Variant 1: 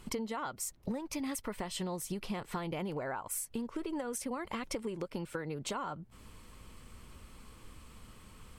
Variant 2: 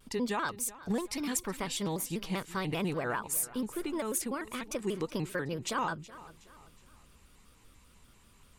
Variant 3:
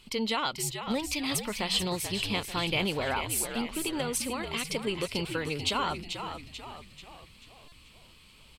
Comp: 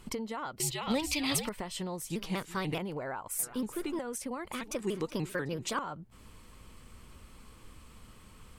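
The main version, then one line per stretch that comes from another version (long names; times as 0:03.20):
1
0:00.60–0:01.49: punch in from 3
0:02.10–0:02.78: punch in from 2
0:03.39–0:03.99: punch in from 2
0:04.52–0:05.79: punch in from 2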